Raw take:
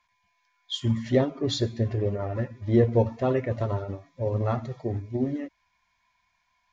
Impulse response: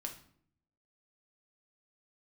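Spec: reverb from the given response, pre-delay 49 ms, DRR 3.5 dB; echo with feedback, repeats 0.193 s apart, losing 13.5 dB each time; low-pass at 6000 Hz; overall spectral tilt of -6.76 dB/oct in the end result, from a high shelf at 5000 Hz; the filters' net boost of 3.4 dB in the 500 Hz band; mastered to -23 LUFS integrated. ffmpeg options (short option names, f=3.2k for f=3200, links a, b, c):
-filter_complex "[0:a]lowpass=6k,equalizer=f=500:t=o:g=4,highshelf=f=5k:g=3,aecho=1:1:193|386:0.211|0.0444,asplit=2[a][b];[1:a]atrim=start_sample=2205,adelay=49[c];[b][c]afir=irnorm=-1:irlink=0,volume=-2dB[d];[a][d]amix=inputs=2:normalize=0,volume=1dB"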